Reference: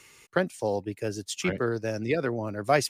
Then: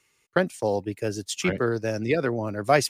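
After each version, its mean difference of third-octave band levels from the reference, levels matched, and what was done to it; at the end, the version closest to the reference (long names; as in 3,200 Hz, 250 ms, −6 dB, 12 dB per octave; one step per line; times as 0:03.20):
1.0 dB: noise gate −41 dBFS, range −16 dB
level +3 dB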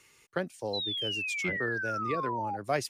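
3.5 dB: sound drawn into the spectrogram fall, 0:00.73–0:02.57, 780–4,100 Hz −27 dBFS
level −7 dB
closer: first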